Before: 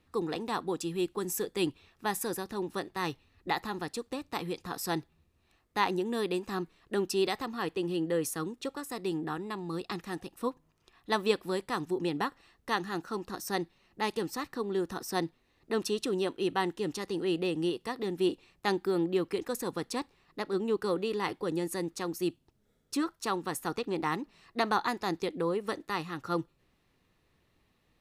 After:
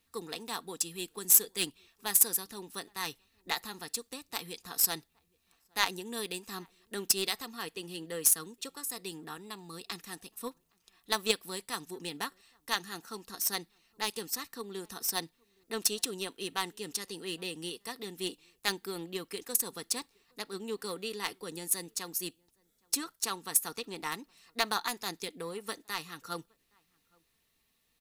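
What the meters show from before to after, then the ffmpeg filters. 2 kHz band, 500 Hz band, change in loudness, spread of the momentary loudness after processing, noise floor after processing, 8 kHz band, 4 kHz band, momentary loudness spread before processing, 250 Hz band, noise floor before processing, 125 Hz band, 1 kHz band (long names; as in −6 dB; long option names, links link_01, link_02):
−1.0 dB, −9.0 dB, +0.5 dB, 14 LU, −75 dBFS, +12.0 dB, +4.5 dB, 7 LU, −10.5 dB, −72 dBFS, −9.5 dB, −5.5 dB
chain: -filter_complex "[0:a]crystalizer=i=6.5:c=0,aeval=exprs='0.75*(cos(1*acos(clip(val(0)/0.75,-1,1)))-cos(1*PI/2))+0.0596*(cos(7*acos(clip(val(0)/0.75,-1,1)))-cos(7*PI/2))':channel_layout=same,aecho=1:1:4.4:0.32,asplit=2[link_01][link_02];[link_02]adelay=816.3,volume=-30dB,highshelf=frequency=4000:gain=-18.4[link_03];[link_01][link_03]amix=inputs=2:normalize=0,volume=-4dB"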